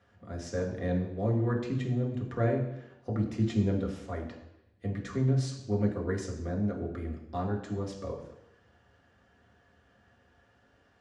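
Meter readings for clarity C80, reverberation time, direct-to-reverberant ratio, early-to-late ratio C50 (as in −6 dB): 9.5 dB, 0.85 s, −1.0 dB, 7.0 dB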